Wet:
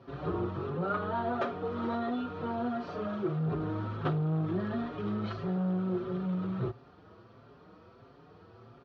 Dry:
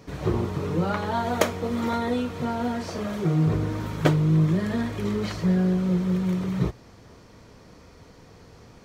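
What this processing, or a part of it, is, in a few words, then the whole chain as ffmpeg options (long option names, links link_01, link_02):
barber-pole flanger into a guitar amplifier: -filter_complex "[0:a]asplit=2[link_01][link_02];[link_02]adelay=5.5,afreqshift=1.5[link_03];[link_01][link_03]amix=inputs=2:normalize=1,asoftclip=type=tanh:threshold=-22.5dB,highpass=94,equalizer=frequency=110:width_type=q:width=4:gain=5,equalizer=frequency=370:width_type=q:width=4:gain=7,equalizer=frequency=700:width_type=q:width=4:gain=5,equalizer=frequency=1300:width_type=q:width=4:gain=10,equalizer=frequency=2100:width_type=q:width=4:gain=-8,lowpass=frequency=3800:width=0.5412,lowpass=frequency=3800:width=1.3066,asettb=1/sr,asplit=3[link_04][link_05][link_06];[link_04]atrim=end=0.704[link_07];[link_05]atrim=start=0.7:end=1.65,asetpts=PTS-STARTPTS,afade=type=in:duration=0.004:curve=qsin,afade=type=out:start_time=0.946:duration=0.004:curve=qsin,highshelf=frequency=4300:gain=-5.5[link_08];[link_06]atrim=start=1.646[link_09];[link_07][link_08]acrossfade=duration=0.004:curve1=hsin:curve2=qsin[link_10];[link_10][link_09]acrossfade=duration=0.004:curve1=qsin:curve2=hsin,volume=-4.5dB"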